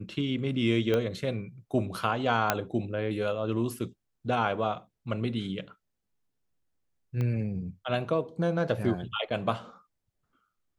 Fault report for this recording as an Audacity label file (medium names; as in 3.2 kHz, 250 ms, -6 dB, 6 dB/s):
0.940000	0.940000	pop -15 dBFS
2.500000	2.500000	pop -7 dBFS
7.210000	7.210000	pop -21 dBFS